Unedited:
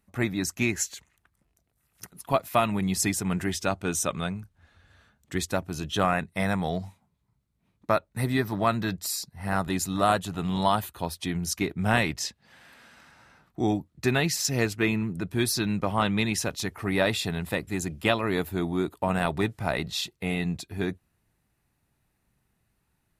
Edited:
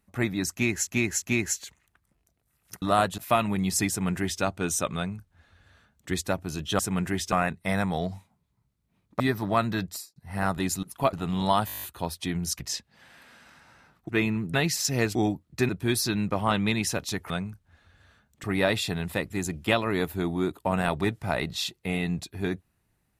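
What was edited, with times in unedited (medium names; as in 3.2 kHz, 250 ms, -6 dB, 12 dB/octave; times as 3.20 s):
0.52–0.87 s: loop, 3 plays
2.12–2.42 s: swap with 9.93–10.29 s
3.13–3.66 s: copy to 6.03 s
4.20–5.34 s: copy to 16.81 s
7.91–8.30 s: delete
8.99–9.26 s: studio fade out
10.83 s: stutter 0.02 s, 9 plays
11.60–12.11 s: delete
13.60–14.14 s: swap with 14.75–15.20 s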